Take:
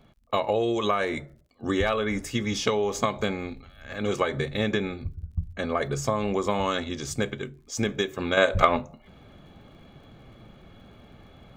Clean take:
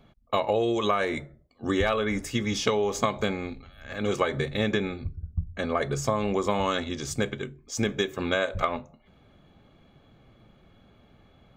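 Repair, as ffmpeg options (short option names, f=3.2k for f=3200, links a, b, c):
-af "adeclick=t=4,asetnsamples=n=441:p=0,asendcmd='8.37 volume volume -7dB',volume=0dB"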